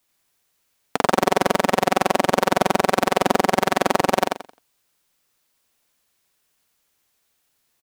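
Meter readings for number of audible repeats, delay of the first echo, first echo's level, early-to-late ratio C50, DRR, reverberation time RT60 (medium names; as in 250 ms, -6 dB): 3, 87 ms, -3.0 dB, no reverb, no reverb, no reverb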